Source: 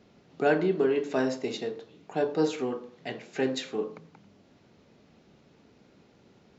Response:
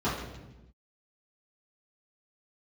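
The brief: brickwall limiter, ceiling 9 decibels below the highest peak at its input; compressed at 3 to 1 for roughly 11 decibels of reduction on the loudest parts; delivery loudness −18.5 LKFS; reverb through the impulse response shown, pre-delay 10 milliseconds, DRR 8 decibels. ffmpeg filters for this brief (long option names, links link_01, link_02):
-filter_complex "[0:a]acompressor=threshold=-35dB:ratio=3,alimiter=level_in=7.5dB:limit=-24dB:level=0:latency=1,volume=-7.5dB,asplit=2[link_01][link_02];[1:a]atrim=start_sample=2205,adelay=10[link_03];[link_02][link_03]afir=irnorm=-1:irlink=0,volume=-19.5dB[link_04];[link_01][link_04]amix=inputs=2:normalize=0,volume=21.5dB"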